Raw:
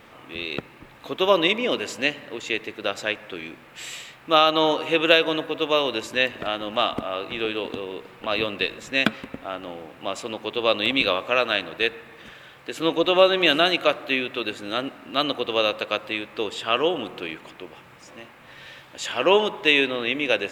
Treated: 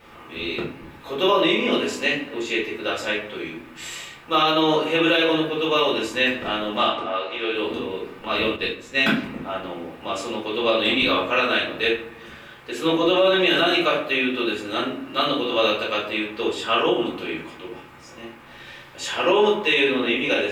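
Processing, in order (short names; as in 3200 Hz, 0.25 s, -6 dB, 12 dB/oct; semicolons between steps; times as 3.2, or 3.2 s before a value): 6.88–7.54 three-band isolator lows -17 dB, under 340 Hz, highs -20 dB, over 7000 Hz; reverb RT60 0.50 s, pre-delay 4 ms, DRR -6.5 dB; 2.67–3.3 crackle 210/s -48 dBFS; notches 60/120/180/240/300/360 Hz; maximiser +2.5 dB; 8.56–9.01 upward expander 1.5:1, over -22 dBFS; gain -8 dB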